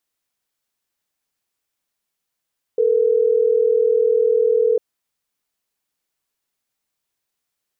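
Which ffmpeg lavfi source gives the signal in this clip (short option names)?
-f lavfi -i "aevalsrc='0.158*(sin(2*PI*440*t)+sin(2*PI*480*t))*clip(min(mod(t,6),2-mod(t,6))/0.005,0,1)':d=3.12:s=44100"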